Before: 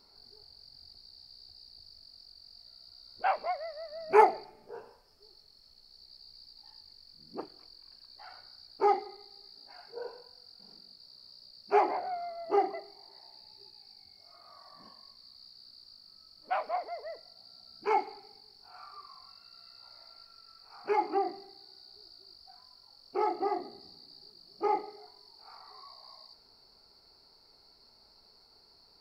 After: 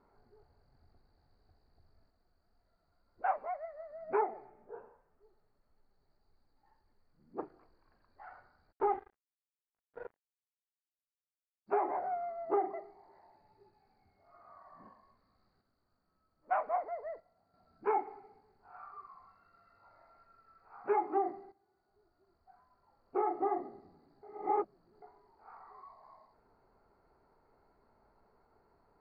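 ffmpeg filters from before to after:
-filter_complex "[0:a]asplit=3[a][b][c];[a]afade=t=out:st=2.09:d=0.02[d];[b]flanger=delay=2.1:depth=5.8:regen=60:speed=1.9:shape=triangular,afade=t=in:st=2.09:d=0.02,afade=t=out:st=7.37:d=0.02[e];[c]afade=t=in:st=7.37:d=0.02[f];[d][e][f]amix=inputs=3:normalize=0,asplit=3[g][h][i];[g]afade=t=out:st=8.71:d=0.02[j];[h]aeval=exprs='sgn(val(0))*max(abs(val(0))-0.00841,0)':c=same,afade=t=in:st=8.71:d=0.02,afade=t=out:st=11.66:d=0.02[k];[i]afade=t=in:st=11.66:d=0.02[l];[j][k][l]amix=inputs=3:normalize=0,asettb=1/sr,asplit=3[m][n][o];[m]atrim=end=15.614[p];[n]atrim=start=15.61:end=17.54,asetpts=PTS-STARTPTS,afade=t=in:d=0.004:c=qsin,afade=t=out:st=1.926:d=0.004:c=qsin,agate=range=-6dB:threshold=-53dB:ratio=16:release=100:detection=peak[q];[o]atrim=start=17.536[r];[p][q]acrossfade=d=0.004:c1=hsin:c2=qsin[s];[s][r]acrossfade=d=0.004:c1=qsin:c2=hsin,asplit=4[t][u][v][w];[t]atrim=end=21.52,asetpts=PTS-STARTPTS,afade=t=out:st=21.516:d=0.004:c=hsin:silence=0.237137[x];[u]atrim=start=21.52:end=24.232,asetpts=PTS-STARTPTS,afade=t=in:d=1.64:silence=0.237137[y];[v]atrim=start=24.228:end=25.022,asetpts=PTS-STARTPTS,areverse[z];[w]atrim=start=25.018[aa];[x][y]concat=n=2:v=0:a=1[ab];[ab][z]acrossfade=d=0.004:c1=hsin:c2=hsin[ac];[ac][aa]acrossfade=d=0.004:c1=hsin:c2=hsin,lowpass=f=1.8k:w=0.5412,lowpass=f=1.8k:w=1.3066,alimiter=limit=-21.5dB:level=0:latency=1:release=270"

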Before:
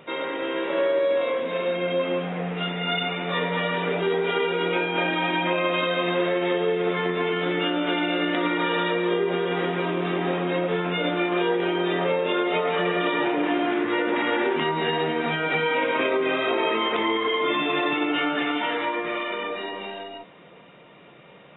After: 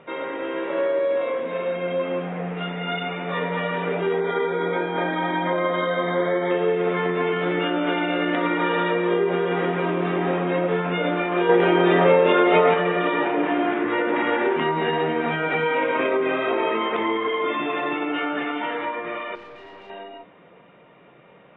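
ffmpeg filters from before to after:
-filter_complex "[0:a]asettb=1/sr,asplit=3[a][b][c];[a]atrim=end=4.204[d];[b]atrim=start=4.2:end=6.51,asetpts=PTS-STARTPTS,afade=t=in:d=0.004:c=qsin,afade=t=out:st=2.306:d=0.004:c=qsin,asuperstop=centerf=2700:order=8:qfactor=3.4[e];[c]atrim=start=6.506[f];[d][e]acrossfade=d=0.004:c1=hsin:c2=qsin[g];[g][f]acrossfade=d=0.004:c1=qsin:c2=hsin,asettb=1/sr,asplit=3[h][i][j];[h]atrim=end=11.494[k];[i]atrim=start=11.49:end=12.74,asetpts=PTS-STARTPTS,afade=t=in:d=0.004:c=qsin,afade=t=out:st=1.246:d=0.004:c=qsin,acontrast=36[l];[j]atrim=start=12.736[m];[k][l]acrossfade=d=0.004:c1=hsin:c2=qsin[n];[n][m]acrossfade=d=0.004:c1=qsin:c2=hsin,asettb=1/sr,asplit=3[o][p][q];[o]atrim=end=19.354[r];[p]atrim=start=19.35:end=19.9,asetpts=PTS-STARTPTS,afade=t=in:d=0.004:c=qsin,afade=t=out:st=0.546:d=0.004:c=qsin,aeval=exprs='(tanh(89.1*val(0)+0.25)-tanh(0.25))/89.1':c=same[s];[q]atrim=start=19.896[t];[r][s]acrossfade=d=0.004:c1=hsin:c2=qsin[u];[u][t]acrossfade=d=0.004:c1=qsin:c2=hsin,bandreject=f=50:t=h:w=6,bandreject=f=100:t=h:w=6,bandreject=f=150:t=h:w=6,bandreject=f=200:t=h:w=6,bandreject=f=250:t=h:w=6,bandreject=f=300:t=h:w=6,bandreject=f=350:t=h:w=6,dynaudnorm=f=340:g=31:m=3.5dB,lowpass=2.3k"

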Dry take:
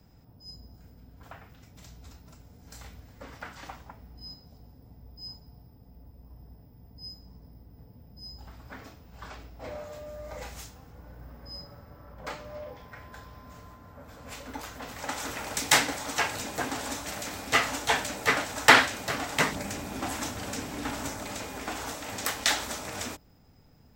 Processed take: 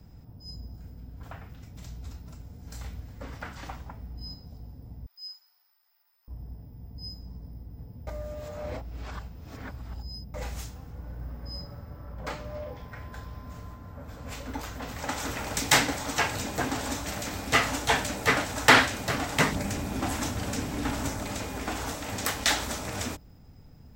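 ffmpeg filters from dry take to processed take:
-filter_complex "[0:a]asettb=1/sr,asplit=3[a][b][c];[a]atrim=end=5.064[d];[b]atrim=start=5.06:end=6.28,asetpts=PTS-STARTPTS,afade=t=in:d=0.004:c=qsin,afade=t=out:st=1.216:d=0.004:c=qsin,highpass=f=1.3k:w=0.5412,highpass=f=1.3k:w=1.3066[e];[c]atrim=start=6.276[f];[d][e]acrossfade=d=0.004:c1=hsin:c2=qsin[g];[g][f]acrossfade=d=0.004:c1=qsin:c2=hsin,asettb=1/sr,asplit=3[h][i][j];[h]atrim=end=13.734[k];[i]atrim=start=13.73:end=17.44,asetpts=PTS-STARTPTS,afade=t=in:d=0.004:c=qsin,afade=t=out:st=3.706:d=0.004:c=qsin,equalizer=f=10k:w=7.7:g=-8.5[l];[j]atrim=start=17.436[m];[k][l]acrossfade=d=0.004:c1=hsin:c2=qsin[n];[n][m]acrossfade=d=0.004:c1=qsin:c2=hsin,asplit=3[o][p][q];[o]atrim=end=8.072[r];[p]atrim=start=8.068:end=10.342,asetpts=PTS-STARTPTS,areverse[s];[q]atrim=start=10.338[t];[r][s]acrossfade=d=0.004:c1=hsin:c2=hsin[u];[u][t]acrossfade=d=0.004:c1=hsin:c2=hsin,lowshelf=f=210:g=9,acontrast=65,volume=-5.5dB"

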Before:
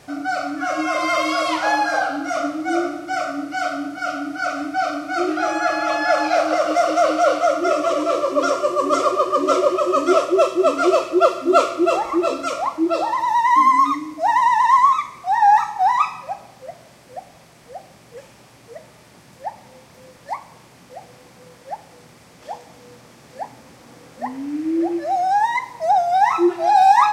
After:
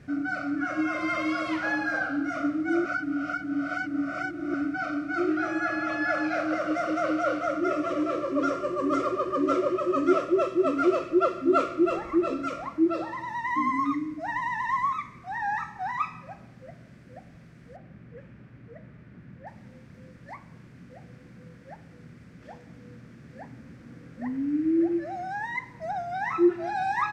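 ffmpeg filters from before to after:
-filter_complex "[0:a]asettb=1/sr,asplit=3[a][b][c];[a]atrim=end=17.764[d];[b]atrim=start=17.76:end=19.47,asetpts=PTS-STARTPTS,afade=t=in:d=0.004:c=qsin,afade=t=out:st=1.706:d=0.004:c=qsin,bass=f=250:g=1,treble=f=4k:g=-15[e];[c]atrim=start=19.466[f];[d][e]acrossfade=d=0.004:c1=hsin:c2=qsin[g];[g][f]acrossfade=d=0.004:c1=qsin:c2=hsin,asplit=3[h][i][j];[h]atrim=end=2.852[k];[i]atrim=start=2.848:end=4.542,asetpts=PTS-STARTPTS,areverse[l];[j]atrim=start=4.538[m];[k][l]acrossfade=d=0.004:c1=hsin:c2=hsin[n];[n][m]acrossfade=d=0.004:c1=hsin:c2=hsin,firequalizer=gain_entry='entry(210,0);entry(380,-9);entry(850,-22);entry(1500,-7);entry(3200,-18);entry(11000,-26)':delay=0.05:min_phase=1,volume=3.5dB"

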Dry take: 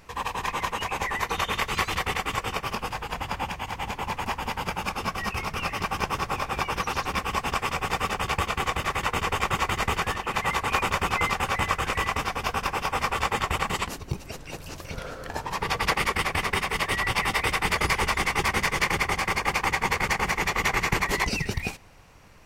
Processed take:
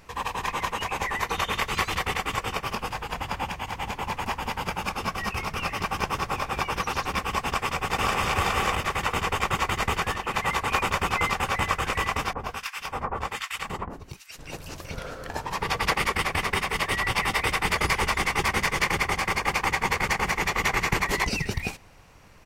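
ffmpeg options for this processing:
-filter_complex "[0:a]asplit=2[a][b];[b]afade=t=in:st=7.45:d=0.01,afade=t=out:st=8.22:d=0.01,aecho=0:1:530|1060|1590:1|0.2|0.04[c];[a][c]amix=inputs=2:normalize=0,asettb=1/sr,asplit=3[d][e][f];[d]atrim=end=12.334[g];[e]atrim=start=12.33:end=14.39,asetpts=PTS-STARTPTS,afade=t=in:d=0.004:c=qsin,afade=t=out:st=2.056:d=0.004:c=qsin,acrossover=split=1400[h][i];[h]aeval=exprs='val(0)*(1-1/2+1/2*cos(2*PI*1.3*n/s))':c=same[j];[i]aeval=exprs='val(0)*(1-1/2-1/2*cos(2*PI*1.3*n/s))':c=same[k];[j][k]amix=inputs=2:normalize=0[l];[f]atrim=start=14.386[m];[g][l]acrossfade=d=0.004:c1=hsin:c2=qsin[n];[n][m]acrossfade=d=0.004:c1=qsin:c2=hsin"

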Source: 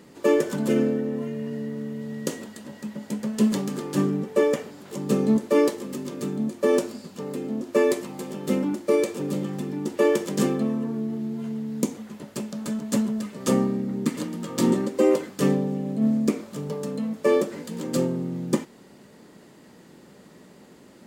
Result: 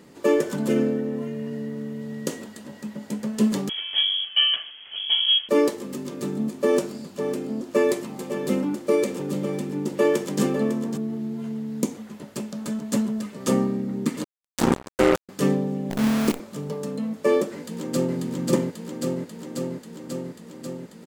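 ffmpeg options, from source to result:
-filter_complex "[0:a]asettb=1/sr,asplit=3[a][b][c];[a]atrim=end=3.694[d];[b]atrim=start=3.69:end=5.49,asetpts=PTS-STARTPTS,afade=t=in:d=0.004:c=qsin,afade=t=out:st=1.796:d=0.004:c=qsin,lowpass=f=3k:t=q:w=0.5098,lowpass=f=3k:t=q:w=0.6013,lowpass=f=3k:t=q:w=0.9,lowpass=f=3k:t=q:w=2.563,afreqshift=-3500[e];[c]atrim=start=5.486[f];[d][e]acrossfade=d=0.004:c1=hsin:c2=qsin[g];[g][f]acrossfade=d=0.004:c1=qsin:c2=hsin,asplit=3[h][i][j];[h]afade=t=out:st=6.22:d=0.02[k];[i]aecho=1:1:552:0.316,afade=t=in:st=6.22:d=0.02,afade=t=out:st=10.96:d=0.02[l];[j]afade=t=in:st=10.96:d=0.02[m];[k][l][m]amix=inputs=3:normalize=0,asettb=1/sr,asplit=3[n][o][p];[n]atrim=end=14.244[q];[o]atrim=start=14.24:end=15.29,asetpts=PTS-STARTPTS,afade=t=in:d=0.004:c=qsin,afade=t=out:st=1.046:d=0.004:c=qsin,acrusher=bits=2:mix=0:aa=0.5[r];[p]atrim=start=15.286[s];[q][r]acrossfade=d=0.004:c1=hsin:c2=qsin[t];[t][s]acrossfade=d=0.004:c1=qsin:c2=hsin,asettb=1/sr,asplit=3[u][v][w];[u]atrim=end=15.904[x];[v]atrim=start=15.9:end=16.4,asetpts=PTS-STARTPTS,afade=t=in:d=0.004:c=qsin,afade=t=out:st=0.496:d=0.004:c=qsin,acrusher=bits=5:dc=4:mix=0:aa=0.000001[y];[w]atrim=start=16.396[z];[x][y]acrossfade=d=0.004:c1=hsin:c2=qsin[aa];[aa][z]acrossfade=d=0.004:c1=qsin:c2=hsin,asplit=2[ab][ac];[ac]afade=t=in:st=17.54:d=0.01,afade=t=out:st=18.16:d=0.01,aecho=0:1:540|1080|1620|2160|2700|3240|3780|4320|4860|5400|5940|6480:0.944061|0.708046|0.531034|0.398276|0.298707|0.22403|0.168023|0.126017|0.0945127|0.0708845|0.0531634|0.0398725[ad];[ab][ad]amix=inputs=2:normalize=0"

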